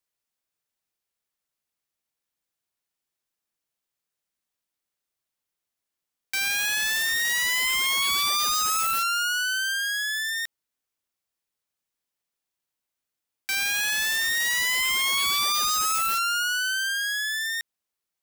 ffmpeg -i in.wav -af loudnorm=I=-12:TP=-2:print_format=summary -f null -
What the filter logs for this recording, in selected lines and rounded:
Input Integrated:    -23.2 LUFS
Input True Peak:     -15.5 dBTP
Input LRA:             8.2 LU
Input Threshold:     -33.3 LUFS